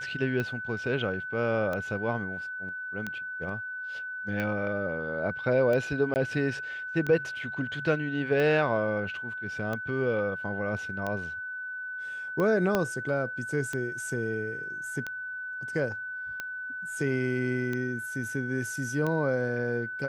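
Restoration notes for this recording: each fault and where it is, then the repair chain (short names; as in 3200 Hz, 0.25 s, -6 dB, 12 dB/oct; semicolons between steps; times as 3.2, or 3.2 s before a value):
tick 45 rpm -19 dBFS
tone 1500 Hz -34 dBFS
6.14–6.16 gap 19 ms
12.75 pop -12 dBFS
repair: de-click; notch 1500 Hz, Q 30; interpolate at 6.14, 19 ms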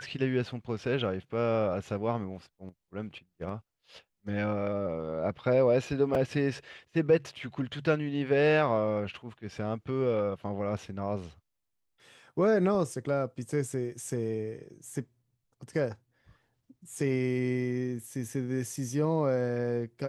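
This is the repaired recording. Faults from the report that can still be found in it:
12.75 pop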